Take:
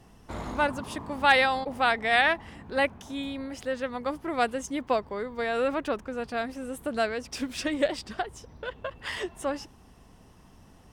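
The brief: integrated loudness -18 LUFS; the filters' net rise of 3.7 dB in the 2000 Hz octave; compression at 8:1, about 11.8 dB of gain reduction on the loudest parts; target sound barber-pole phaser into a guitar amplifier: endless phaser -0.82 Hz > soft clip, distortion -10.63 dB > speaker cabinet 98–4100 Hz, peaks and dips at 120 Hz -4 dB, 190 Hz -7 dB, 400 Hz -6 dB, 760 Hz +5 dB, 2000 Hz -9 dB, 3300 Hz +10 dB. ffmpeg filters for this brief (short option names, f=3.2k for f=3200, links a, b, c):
-filter_complex "[0:a]equalizer=f=2k:t=o:g=9,acompressor=threshold=-23dB:ratio=8,asplit=2[a][b];[b]afreqshift=-0.82[c];[a][c]amix=inputs=2:normalize=1,asoftclip=threshold=-29.5dB,highpass=98,equalizer=f=120:t=q:w=4:g=-4,equalizer=f=190:t=q:w=4:g=-7,equalizer=f=400:t=q:w=4:g=-6,equalizer=f=760:t=q:w=4:g=5,equalizer=f=2k:t=q:w=4:g=-9,equalizer=f=3.3k:t=q:w=4:g=10,lowpass=f=4.1k:w=0.5412,lowpass=f=4.1k:w=1.3066,volume=19.5dB"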